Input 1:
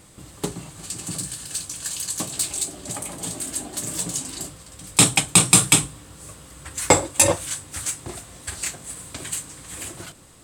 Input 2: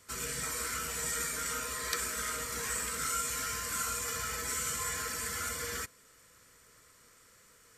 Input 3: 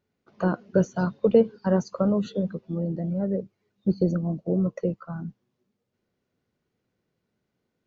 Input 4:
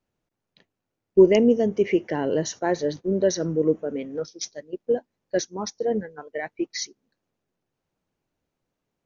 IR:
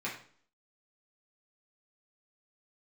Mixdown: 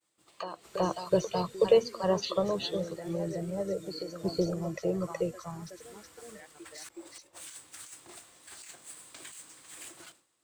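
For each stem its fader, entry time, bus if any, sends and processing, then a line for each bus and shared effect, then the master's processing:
−15.5 dB, 0.00 s, bus A, no send, no echo send, running median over 3 samples; compressor whose output falls as the input rises −34 dBFS, ratio −1; automatic ducking −17 dB, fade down 1.90 s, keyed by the third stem
−12.0 dB, 0.55 s, no bus, no send, no echo send, downward compressor 2 to 1, threshold −52 dBFS, peak gain reduction 13 dB
+1.5 dB, 0.00 s, bus A, no send, echo send −3.5 dB, flat-topped bell 2,300 Hz +14 dB 2.6 octaves; phaser with its sweep stopped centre 600 Hz, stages 4
−16.0 dB, 0.00 s, bus A, no send, echo send −4.5 dB, downward compressor 2 to 1, threshold −30 dBFS, peak gain reduction 11.5 dB
bus A: 0.0 dB, high-pass filter 840 Hz 6 dB per octave; downward compressor 6 to 1, threshold −36 dBFS, peak gain reduction 15 dB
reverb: not used
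echo: single-tap delay 371 ms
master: downward expander −54 dBFS; parametric band 330 Hz +7 dB 0.2 octaves

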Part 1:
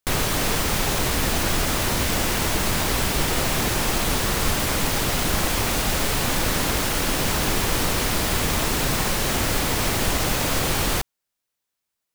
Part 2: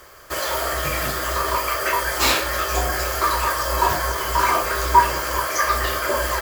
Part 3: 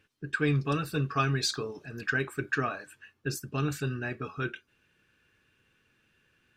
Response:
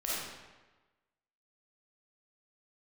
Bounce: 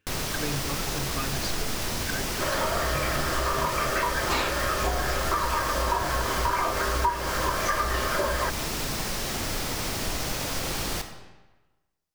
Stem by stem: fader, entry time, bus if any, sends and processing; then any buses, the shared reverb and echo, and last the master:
−10.0 dB, 0.00 s, send −11.5 dB, parametric band 5,300 Hz +4.5 dB 0.63 octaves
0.0 dB, 2.10 s, no send, low-pass filter 2,400 Hz 6 dB per octave
−6.5 dB, 0.00 s, no send, no processing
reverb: on, RT60 1.2 s, pre-delay 10 ms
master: downward compressor, threshold −22 dBFS, peak gain reduction 13 dB

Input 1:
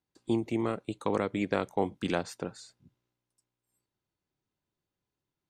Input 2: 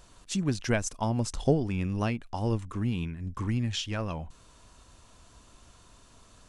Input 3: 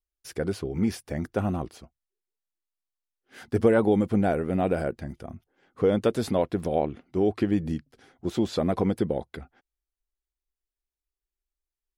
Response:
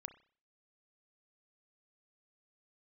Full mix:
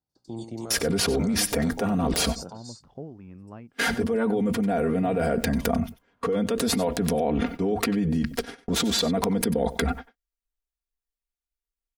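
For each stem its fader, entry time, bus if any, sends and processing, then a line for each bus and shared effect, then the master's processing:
−2.0 dB, 0.00 s, bus A, no send, echo send −12 dB, high shelf with overshoot 3,400 Hz +13.5 dB, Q 3; comb filter 1.4 ms, depth 35%
−12.5 dB, 1.50 s, bus A, no send, no echo send, high-pass filter 110 Hz
−13.0 dB, 0.45 s, no bus, no send, echo send −16 dB, noise gate −52 dBFS, range −33 dB; comb filter 4.3 ms, depth 97%; envelope flattener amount 100%
bus A: 0.0 dB, low-pass filter 1,400 Hz 12 dB per octave; brickwall limiter −26.5 dBFS, peak gain reduction 10 dB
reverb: not used
echo: single-tap delay 94 ms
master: wrap-around overflow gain 11.5 dB

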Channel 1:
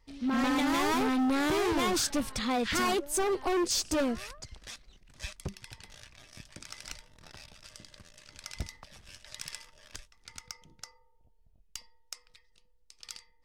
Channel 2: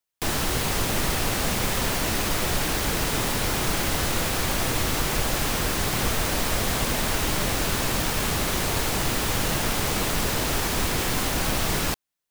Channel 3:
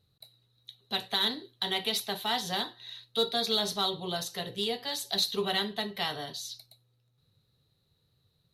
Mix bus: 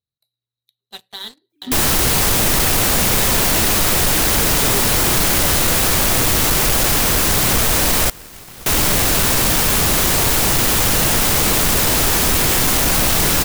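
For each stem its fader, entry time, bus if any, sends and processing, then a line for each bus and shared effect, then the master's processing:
−16.0 dB, 1.45 s, no send, no echo send, three sine waves on the formant tracks
−0.5 dB, 1.50 s, muted 0:08.10–0:08.66, no send, echo send −23 dB, no processing
−15.5 dB, 0.00 s, no send, no echo send, no processing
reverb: not used
echo: single-tap delay 1,048 ms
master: high-shelf EQ 6,900 Hz +8 dB; leveller curve on the samples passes 3

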